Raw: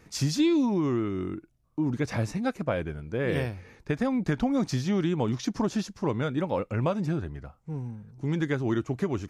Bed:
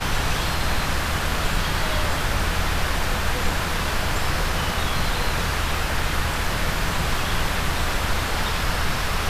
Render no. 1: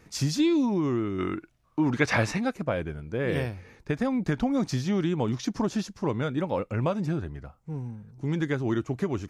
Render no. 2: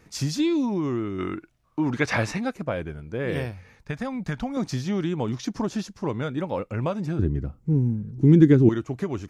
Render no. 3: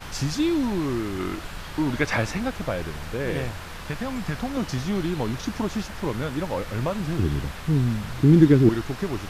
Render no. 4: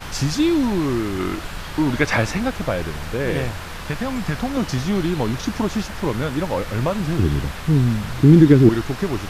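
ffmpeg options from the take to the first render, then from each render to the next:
-filter_complex "[0:a]asplit=3[a][b][c];[a]afade=t=out:st=1.18:d=0.02[d];[b]equalizer=f=1.9k:w=0.31:g=12.5,afade=t=in:st=1.18:d=0.02,afade=t=out:st=2.43:d=0.02[e];[c]afade=t=in:st=2.43:d=0.02[f];[d][e][f]amix=inputs=3:normalize=0"
-filter_complex "[0:a]asettb=1/sr,asplit=3[a][b][c];[a]atrim=end=3.514[d];[b]atrim=start=3.51:end=4.57,asetpts=PTS-STARTPTS,afade=t=in:d=0.004:c=qsin,afade=t=out:st=1.056:d=0.004:c=qsin,equalizer=f=350:t=o:w=0.77:g=-11[e];[c]atrim=start=4.566[f];[d][e]acrossfade=d=0.004:c1=hsin:c2=qsin[g];[g][f]acrossfade=d=0.004:c1=qsin:c2=hsin,asettb=1/sr,asplit=3[h][i][j];[h]atrim=end=7.194[k];[i]atrim=start=7.19:end=8.69,asetpts=PTS-STARTPTS,afade=t=in:d=0.004:c=qsin,afade=t=out:st=1.496:d=0.004:c=qsin,lowshelf=f=500:t=q:w=1.5:g=12[l];[j]atrim=start=8.686[m];[k][l]acrossfade=d=0.004:c1=hsin:c2=qsin[n];[n][m]acrossfade=d=0.004:c1=qsin:c2=hsin"
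-filter_complex "[1:a]volume=-13.5dB[a];[0:a][a]amix=inputs=2:normalize=0"
-af "volume=5dB,alimiter=limit=-2dB:level=0:latency=1"

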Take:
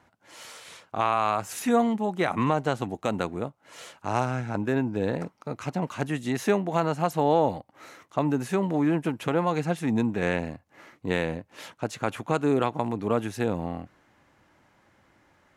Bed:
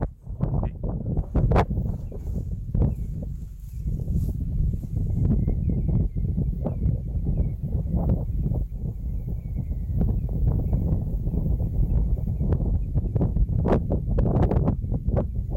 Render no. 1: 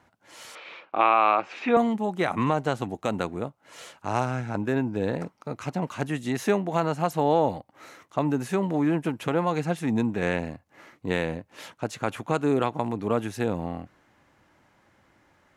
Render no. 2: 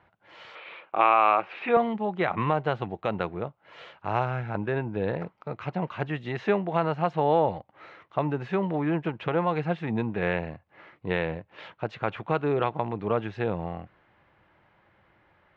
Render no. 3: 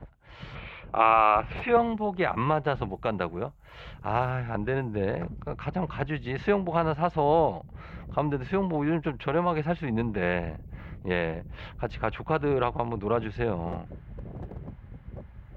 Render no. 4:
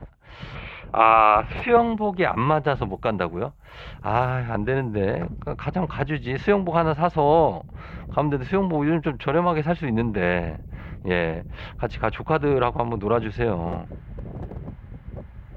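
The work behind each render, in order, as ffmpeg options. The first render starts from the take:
-filter_complex "[0:a]asettb=1/sr,asplit=3[a][b][c];[a]atrim=end=0.554[d];[b]atrim=start=0.55:end=1.77,asetpts=PTS-STARTPTS,afade=t=in:d=0.004:c=qsin,afade=t=out:st=1.216:d=0.004:c=qsin,highpass=260,equalizer=f=330:t=q:w=4:g=8,equalizer=f=550:t=q:w=4:g=5,equalizer=f=810:t=q:w=4:g=4,equalizer=f=1.2k:t=q:w=4:g=5,equalizer=f=2.4k:t=q:w=4:g=10,lowpass=f=3.9k:w=0.5412,lowpass=f=3.9k:w=1.3066[e];[c]atrim=start=1.766[f];[d][e]acrossfade=d=0.004:c1=hsin:c2=qsin[g];[g][f]acrossfade=d=0.004:c1=qsin:c2=hsin"
-af "lowpass=f=3.4k:w=0.5412,lowpass=f=3.4k:w=1.3066,equalizer=f=260:w=4.9:g=-12.5"
-filter_complex "[1:a]volume=-18.5dB[a];[0:a][a]amix=inputs=2:normalize=0"
-af "volume=5dB"

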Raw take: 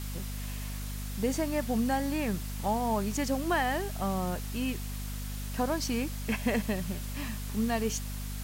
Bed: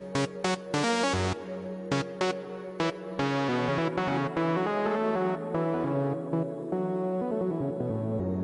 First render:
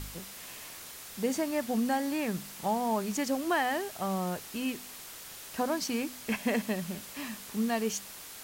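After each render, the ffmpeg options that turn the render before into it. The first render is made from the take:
-af "bandreject=f=50:t=h:w=4,bandreject=f=100:t=h:w=4,bandreject=f=150:t=h:w=4,bandreject=f=200:t=h:w=4,bandreject=f=250:t=h:w=4"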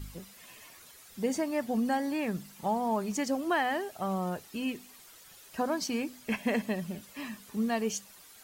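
-af "afftdn=nr=11:nf=-46"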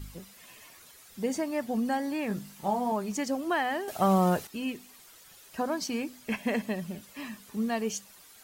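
-filter_complex "[0:a]asettb=1/sr,asplit=3[a][b][c];[a]atrim=end=2.284[d];[b]atrim=start=2.28:end=2.92,asetpts=PTS-STARTPTS,afade=t=in:d=0.004:c=qsin,afade=t=out:st=0.636:d=0.004:c=qsin,asplit=2[e][f];[f]adelay=20,volume=-5dB[g];[e][g]amix=inputs=2:normalize=0,atrim=end_sample=28224[h];[c]atrim=start=2.916[i];[d][h]acrossfade=d=0.004:c1=hsin:c2=qsin[j];[j][i]acrossfade=d=0.004:c1=qsin:c2=hsin,asplit=3[k][l][m];[k]atrim=end=3.882[n];[l]atrim=start=3.878:end=4.472,asetpts=PTS-STARTPTS,volume=9dB[o];[m]atrim=start=4.468[p];[n][o]acrossfade=d=0.004:c1=hsin:c2=hsin[q];[q][p]acrossfade=d=0.004:c1=hsin:c2=hsin"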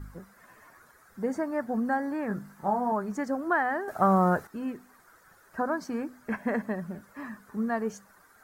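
-af "highshelf=f=2.1k:t=q:w=3:g=-11"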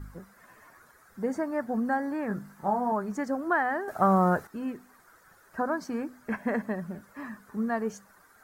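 -af anull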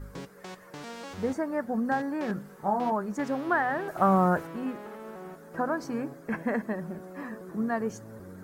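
-filter_complex "[1:a]volume=-15dB[a];[0:a][a]amix=inputs=2:normalize=0"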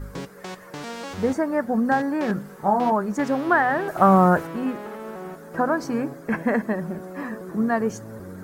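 -af "volume=7dB"

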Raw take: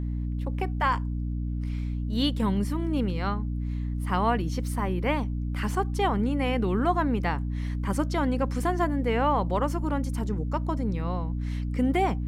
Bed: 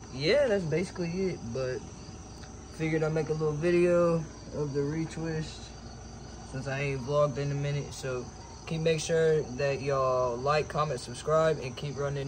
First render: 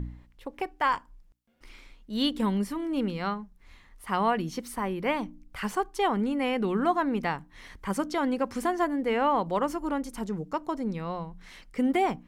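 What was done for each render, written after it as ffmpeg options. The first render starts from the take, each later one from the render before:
-af "bandreject=f=60:t=h:w=4,bandreject=f=120:t=h:w=4,bandreject=f=180:t=h:w=4,bandreject=f=240:t=h:w=4,bandreject=f=300:t=h:w=4"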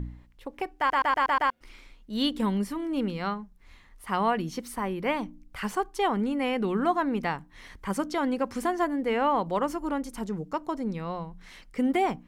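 -filter_complex "[0:a]asplit=7[a][b][c][d][e][f][g];[a]atrim=end=0.902[h];[b]atrim=start=0.778:end=0.902[i];[c]atrim=start=0.778:end=0.902[j];[d]atrim=start=0.778:end=0.902[k];[e]atrim=start=0.778:end=0.902[l];[f]atrim=start=0.778:end=0.902[m];[g]atrim=start=1.498[n];[h][i]acrossfade=d=0.004:c1=hsin:c2=hsin[o];[o][j]acrossfade=d=0.004:c1=hsin:c2=hsin[p];[p][k]acrossfade=d=0.004:c1=hsin:c2=hsin[q];[q][l]acrossfade=d=0.004:c1=hsin:c2=hsin[r];[r][m]acrossfade=d=0.004:c1=hsin:c2=hsin[s];[s][n]acrossfade=d=0.004:c1=hsin:c2=hsin"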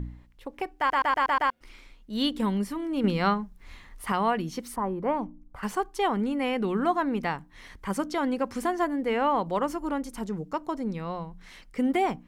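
-filter_complex "[0:a]asettb=1/sr,asplit=3[a][b][c];[a]atrim=end=4.764[d];[b]atrim=start=4.76:end=5.63,asetpts=PTS-STARTPTS,afade=t=in:d=0.004:c=qsin,afade=t=out:st=0.866:d=0.004:c=qsin,highshelf=f=1.6k:t=q:w=1.5:g=-13.5[e];[c]atrim=start=5.626[f];[d][e]acrossfade=d=0.004:c1=hsin:c2=qsin[g];[g][f]acrossfade=d=0.004:c1=qsin:c2=hsin,asplit=3[h][i][j];[h]atrim=end=3.042[k];[i]atrim=start=3.038:end=4.122,asetpts=PTS-STARTPTS,volume=6.5dB[l];[j]atrim=start=4.118[m];[k][l]acrossfade=d=0.004:c1=hsin:c2=hsin[n];[n][m]acrossfade=d=0.004:c1=hsin:c2=hsin"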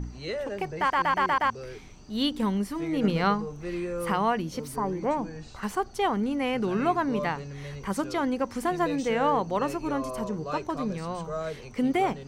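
-filter_complex "[1:a]volume=-8dB[a];[0:a][a]amix=inputs=2:normalize=0"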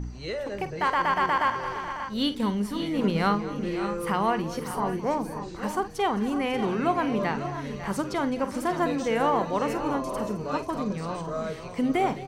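-filter_complex "[0:a]asplit=2[a][b];[b]adelay=49,volume=-12.5dB[c];[a][c]amix=inputs=2:normalize=0,aecho=1:1:215|547|587:0.15|0.237|0.266"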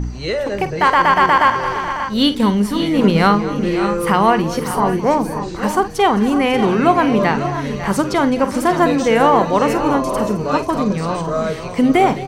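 -af "volume=11.5dB,alimiter=limit=-2dB:level=0:latency=1"

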